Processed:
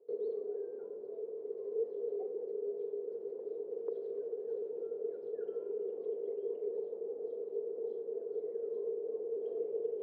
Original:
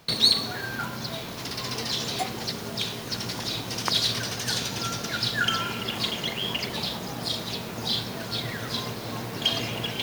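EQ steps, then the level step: Butterworth band-pass 440 Hz, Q 6.2; +7.5 dB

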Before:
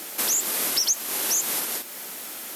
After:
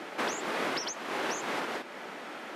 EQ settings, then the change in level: low-pass 1.9 kHz 12 dB/octave; bass shelf 130 Hz -9 dB; +4.0 dB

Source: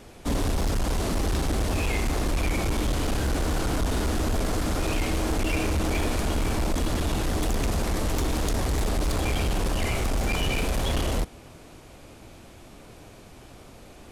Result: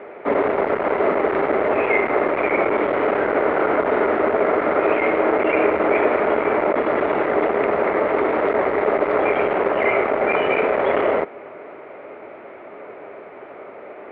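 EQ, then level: distance through air 140 m; cabinet simulation 370–2200 Hz, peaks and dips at 410 Hz +10 dB, 600 Hz +9 dB, 890 Hz +3 dB, 1.3 kHz +6 dB, 2.1 kHz +9 dB; +8.5 dB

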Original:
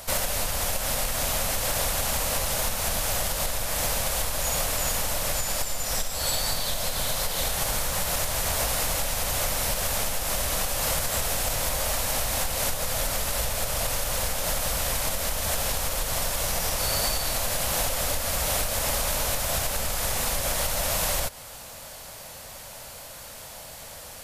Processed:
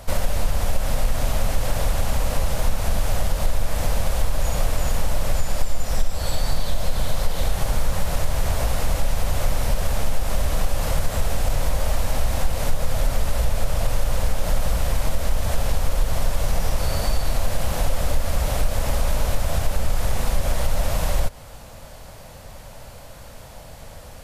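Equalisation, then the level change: tilt EQ -2.5 dB/octave; 0.0 dB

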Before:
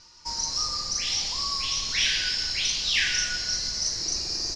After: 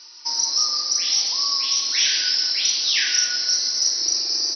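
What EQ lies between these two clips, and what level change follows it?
treble shelf 2.2 kHz +12 dB; dynamic bell 2.8 kHz, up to -7 dB, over -31 dBFS, Q 1; brick-wall FIR band-pass 230–6000 Hz; 0.0 dB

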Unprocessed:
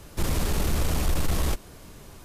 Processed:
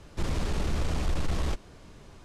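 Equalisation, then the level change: distance through air 100 m; treble shelf 8.4 kHz +6.5 dB; -3.5 dB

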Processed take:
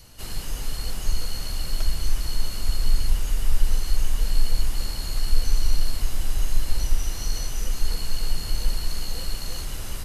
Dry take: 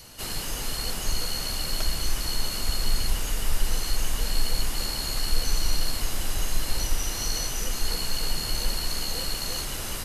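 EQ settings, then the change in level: bass shelf 120 Hz +11 dB; -5.0 dB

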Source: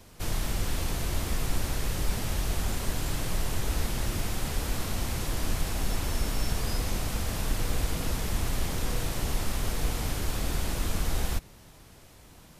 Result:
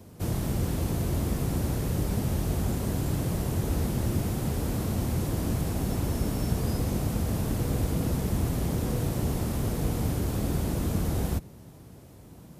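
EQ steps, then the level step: high-pass 89 Hz 12 dB/octave; tilt shelf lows +9.5 dB, about 810 Hz; treble shelf 7.5 kHz +10.5 dB; 0.0 dB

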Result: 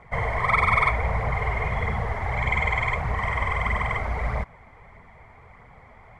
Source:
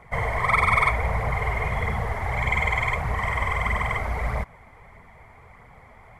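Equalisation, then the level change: distance through air 62 m; 0.0 dB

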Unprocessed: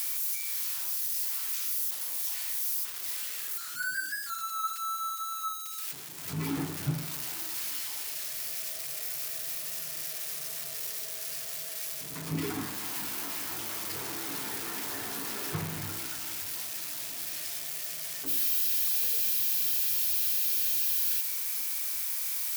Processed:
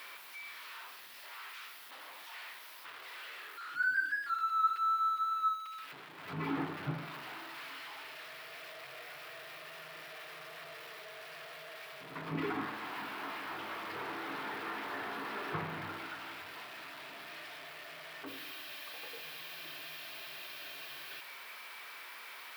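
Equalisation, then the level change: high-pass 610 Hz 6 dB/octave; distance through air 470 m; peaking EQ 1.2 kHz +2.5 dB; +5.0 dB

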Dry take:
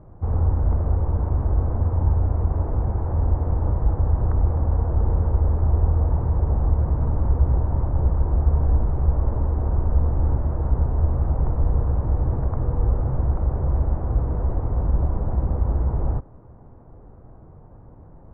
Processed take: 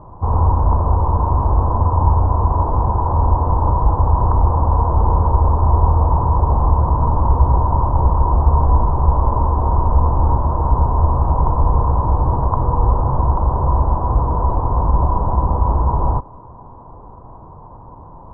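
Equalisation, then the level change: resonant low-pass 1 kHz, resonance Q 9.7; +5.0 dB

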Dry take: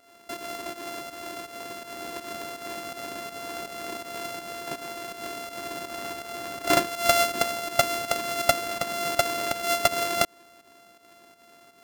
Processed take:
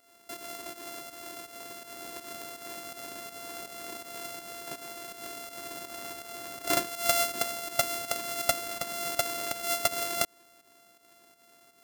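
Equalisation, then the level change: treble shelf 5.7 kHz +9.5 dB; -7.5 dB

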